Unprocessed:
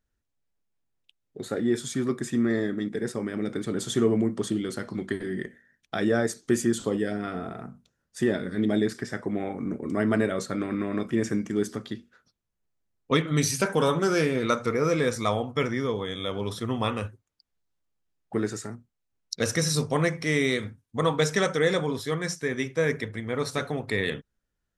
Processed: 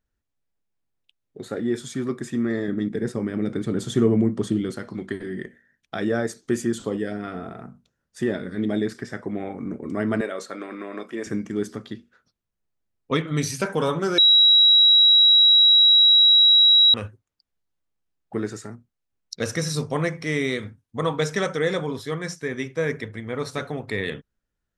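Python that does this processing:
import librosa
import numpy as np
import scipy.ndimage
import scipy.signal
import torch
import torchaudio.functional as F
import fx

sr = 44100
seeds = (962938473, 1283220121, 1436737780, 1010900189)

y = fx.low_shelf(x, sr, hz=290.0, db=8.0, at=(2.68, 4.72))
y = fx.highpass(y, sr, hz=400.0, slope=12, at=(10.21, 11.27))
y = fx.edit(y, sr, fx.bleep(start_s=14.18, length_s=2.76, hz=3870.0, db=-9.5), tone=tone)
y = fx.high_shelf(y, sr, hz=5600.0, db=-5.0)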